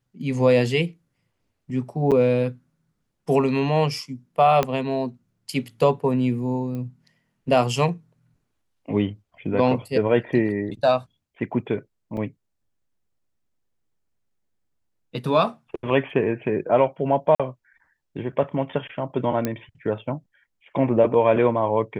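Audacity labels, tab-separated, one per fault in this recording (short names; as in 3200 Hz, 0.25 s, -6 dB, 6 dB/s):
2.110000	2.120000	gap 7.2 ms
4.630000	4.630000	pop -8 dBFS
6.750000	6.750000	pop -22 dBFS
12.170000	12.170000	gap 2.4 ms
17.350000	17.400000	gap 46 ms
19.450000	19.450000	pop -10 dBFS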